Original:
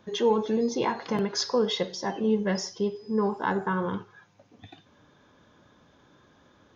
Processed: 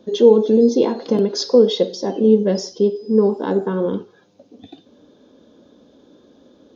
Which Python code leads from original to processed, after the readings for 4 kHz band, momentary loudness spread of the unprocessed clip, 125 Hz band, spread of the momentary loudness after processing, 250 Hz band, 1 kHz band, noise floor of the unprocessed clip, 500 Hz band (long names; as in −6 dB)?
+5.0 dB, 6 LU, +7.5 dB, 9 LU, +10.5 dB, −0.5 dB, −61 dBFS, +12.5 dB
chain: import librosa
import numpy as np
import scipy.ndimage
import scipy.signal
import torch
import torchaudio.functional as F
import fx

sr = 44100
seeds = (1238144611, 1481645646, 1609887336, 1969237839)

y = fx.graphic_eq_10(x, sr, hz=(125, 250, 500, 1000, 2000, 4000), db=(-7, 12, 11, -5, -8, 7))
y = y * librosa.db_to_amplitude(1.0)